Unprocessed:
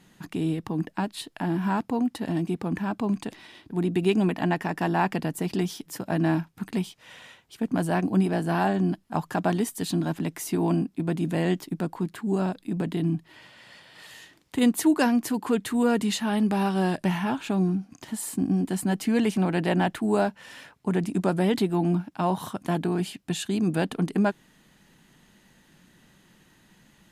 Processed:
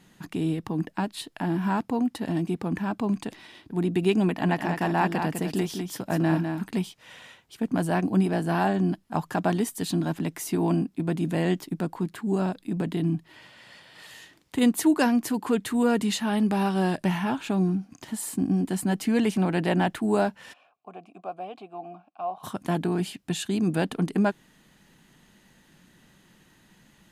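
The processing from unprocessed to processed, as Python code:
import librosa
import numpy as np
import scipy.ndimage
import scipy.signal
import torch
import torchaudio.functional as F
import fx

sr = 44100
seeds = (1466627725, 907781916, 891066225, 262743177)

y = fx.echo_single(x, sr, ms=202, db=-6.5, at=(4.43, 6.68), fade=0.02)
y = fx.vowel_filter(y, sr, vowel='a', at=(20.52, 22.43), fade=0.02)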